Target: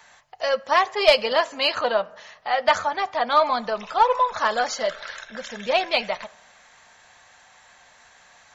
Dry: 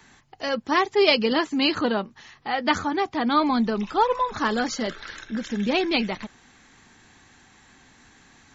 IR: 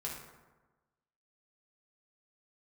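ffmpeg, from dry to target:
-filter_complex "[0:a]lowshelf=f=440:t=q:w=3:g=-11.5,acontrast=24,aeval=exprs='1*(cos(1*acos(clip(val(0)/1,-1,1)))-cos(1*PI/2))+0.1*(cos(2*acos(clip(val(0)/1,-1,1)))-cos(2*PI/2))+0.0126*(cos(8*acos(clip(val(0)/1,-1,1)))-cos(8*PI/2))':c=same,bandreject=f=810:w=12,asplit=2[a][b];[1:a]atrim=start_sample=2205,asetrate=52920,aresample=44100[c];[b][c]afir=irnorm=-1:irlink=0,volume=-15.5dB[d];[a][d]amix=inputs=2:normalize=0,volume=-4dB"

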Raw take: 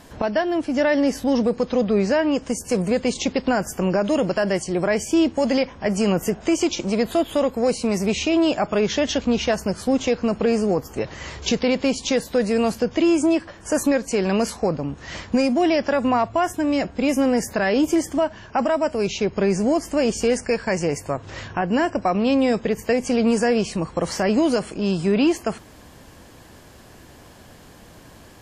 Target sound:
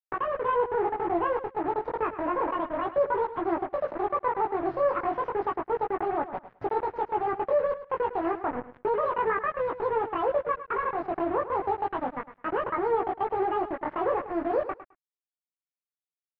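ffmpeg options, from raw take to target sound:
-filter_complex "[0:a]asetrate=76440,aresample=44100,flanger=delay=17.5:depth=3.5:speed=0.31,asplit=2[a][b];[b]aeval=exprs='sgn(val(0))*max(abs(val(0))-0.0119,0)':c=same,volume=-5dB[c];[a][c]amix=inputs=2:normalize=0,acrusher=bits=3:mix=0:aa=0.5,lowpass=f=1.8k:w=0.5412,lowpass=f=1.8k:w=1.3066,asplit=2[d][e];[e]aecho=0:1:106|212:0.224|0.0381[f];[d][f]amix=inputs=2:normalize=0,volume=-8dB"

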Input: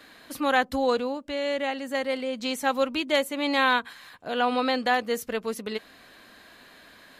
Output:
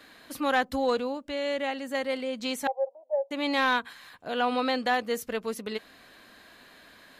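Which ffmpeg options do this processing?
-filter_complex "[0:a]asettb=1/sr,asplit=3[a][b][c];[a]atrim=end=2.674[d];[b]atrim=start=2.67:end=3.31,asetpts=PTS-STARTPTS,afade=t=in:d=0.004:c=qsin,afade=t=out:st=0.636:d=0.004:c=qsin,asuperpass=centerf=660:order=8:qfactor=2.1[e];[c]atrim=start=3.306[f];[d][e]acrossfade=d=0.004:c1=hsin:c2=qsin[g];[g][f]acrossfade=d=0.004:c1=qsin:c2=hsin,acontrast=85,volume=-9dB"

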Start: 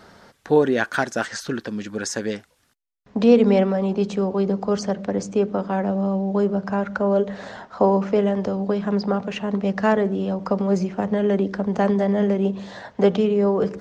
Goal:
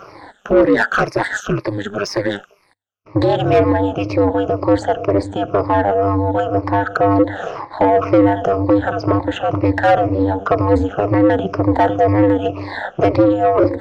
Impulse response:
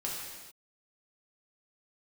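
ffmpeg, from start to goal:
-filter_complex "[0:a]afftfilt=real='re*pow(10,22/40*sin(2*PI*(0.89*log(max(b,1)*sr/1024/100)/log(2)-(-2)*(pts-256)/sr)))':imag='im*pow(10,22/40*sin(2*PI*(0.89*log(max(b,1)*sr/1024/100)/log(2)-(-2)*(pts-256)/sr)))':win_size=1024:overlap=0.75,asplit=2[a][b];[b]highpass=f=720:p=1,volume=20dB,asoftclip=type=tanh:threshold=0dB[c];[a][c]amix=inputs=2:normalize=0,lowpass=f=1.1k:p=1,volume=-6dB,aeval=exprs='val(0)*sin(2*PI*100*n/s)':c=same"

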